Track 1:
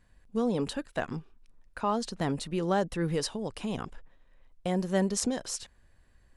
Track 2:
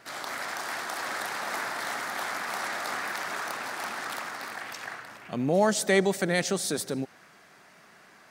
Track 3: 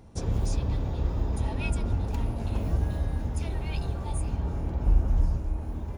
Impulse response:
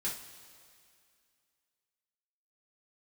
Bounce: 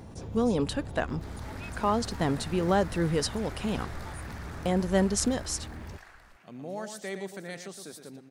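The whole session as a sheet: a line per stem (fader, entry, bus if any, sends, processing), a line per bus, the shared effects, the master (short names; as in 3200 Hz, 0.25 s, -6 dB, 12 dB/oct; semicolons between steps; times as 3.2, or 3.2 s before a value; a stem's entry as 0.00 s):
+2.5 dB, 0.00 s, no send, no echo send, dry
-14.5 dB, 1.15 s, no send, echo send -8 dB, dry
-13.0 dB, 0.00 s, no send, no echo send, HPF 73 Hz 12 dB/oct; fast leveller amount 70%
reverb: off
echo: echo 0.115 s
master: dry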